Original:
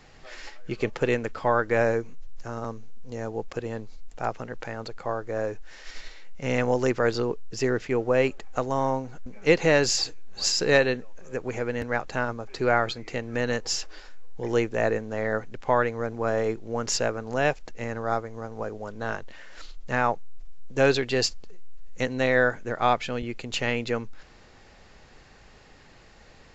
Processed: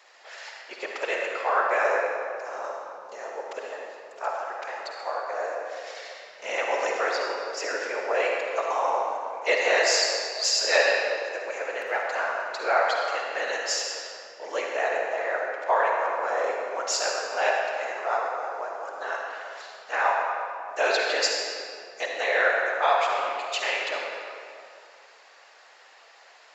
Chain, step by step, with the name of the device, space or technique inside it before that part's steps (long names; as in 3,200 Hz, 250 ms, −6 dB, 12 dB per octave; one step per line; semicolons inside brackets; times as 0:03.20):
whispering ghost (random phases in short frames; high-pass filter 570 Hz 24 dB per octave; convolution reverb RT60 2.4 s, pre-delay 45 ms, DRR −1 dB)